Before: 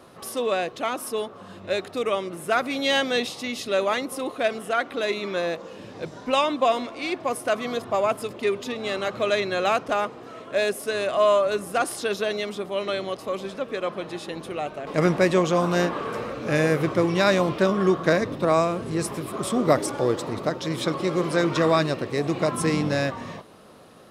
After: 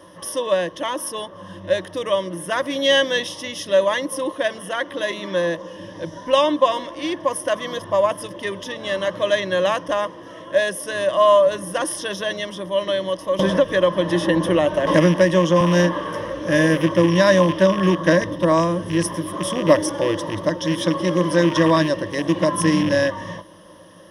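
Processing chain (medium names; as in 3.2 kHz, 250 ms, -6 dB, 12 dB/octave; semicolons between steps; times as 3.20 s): rattle on loud lows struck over -27 dBFS, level -21 dBFS; rippled EQ curve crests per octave 1.2, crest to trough 15 dB; 13.39–15.61 s: three bands compressed up and down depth 100%; trim +1 dB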